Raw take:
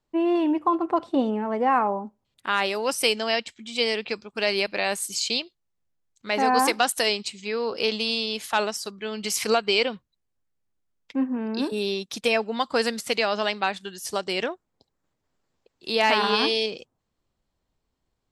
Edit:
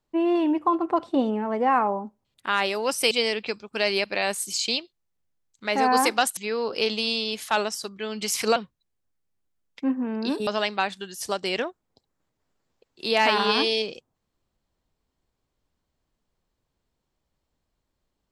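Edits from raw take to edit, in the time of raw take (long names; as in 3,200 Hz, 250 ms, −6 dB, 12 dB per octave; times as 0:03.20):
0:03.11–0:03.73: remove
0:06.99–0:07.39: remove
0:09.58–0:09.88: remove
0:11.79–0:13.31: remove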